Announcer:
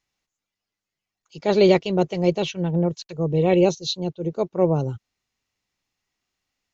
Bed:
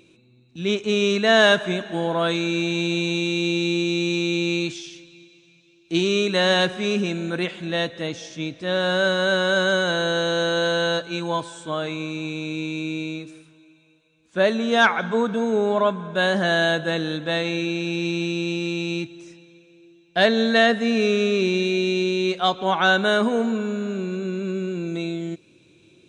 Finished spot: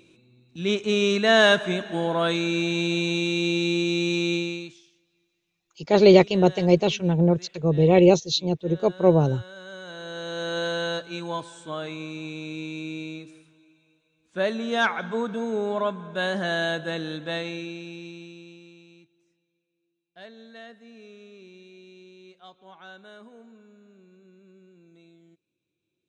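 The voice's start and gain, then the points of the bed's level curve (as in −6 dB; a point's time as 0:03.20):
4.45 s, +2.0 dB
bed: 0:04.34 −1.5 dB
0:04.93 −23.5 dB
0:09.54 −23.5 dB
0:10.57 −6 dB
0:17.36 −6 dB
0:18.96 −27.5 dB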